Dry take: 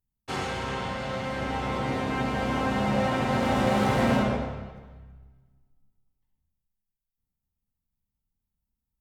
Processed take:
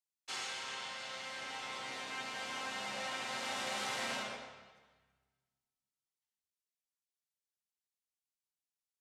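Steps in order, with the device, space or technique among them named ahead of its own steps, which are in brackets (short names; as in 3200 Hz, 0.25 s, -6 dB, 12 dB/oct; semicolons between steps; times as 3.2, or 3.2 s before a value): piezo pickup straight into a mixer (LPF 6900 Hz 12 dB/oct; differentiator); gain +3.5 dB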